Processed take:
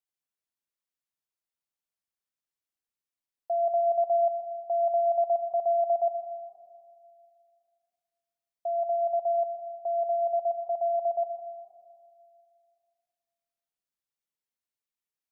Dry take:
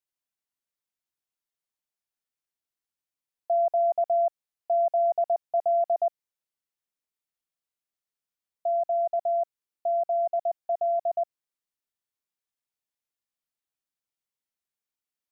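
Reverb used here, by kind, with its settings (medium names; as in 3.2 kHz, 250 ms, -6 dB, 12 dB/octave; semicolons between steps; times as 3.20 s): algorithmic reverb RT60 2.2 s, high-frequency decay 0.55×, pre-delay 75 ms, DRR 8 dB; trim -4 dB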